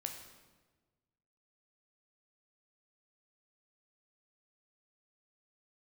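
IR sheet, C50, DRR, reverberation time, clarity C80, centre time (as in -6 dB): 6.5 dB, 3.5 dB, 1.3 s, 8.0 dB, 31 ms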